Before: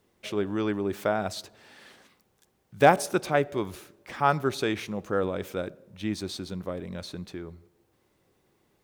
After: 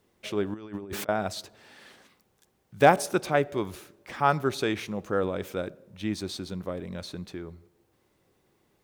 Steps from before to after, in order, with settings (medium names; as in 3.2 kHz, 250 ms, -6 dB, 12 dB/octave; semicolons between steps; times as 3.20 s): 0.54–1.09 s: compressor with a negative ratio -35 dBFS, ratio -0.5